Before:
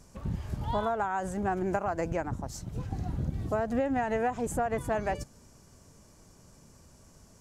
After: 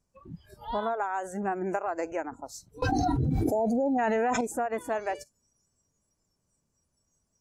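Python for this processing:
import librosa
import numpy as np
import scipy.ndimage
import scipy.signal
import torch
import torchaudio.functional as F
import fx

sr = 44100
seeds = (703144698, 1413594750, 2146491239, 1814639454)

y = fx.noise_reduce_blind(x, sr, reduce_db=22)
y = fx.spec_repair(y, sr, seeds[0], start_s=3.34, length_s=0.62, low_hz=990.0, high_hz=4400.0, source='before')
y = fx.env_flatten(y, sr, amount_pct=100, at=(2.82, 4.41))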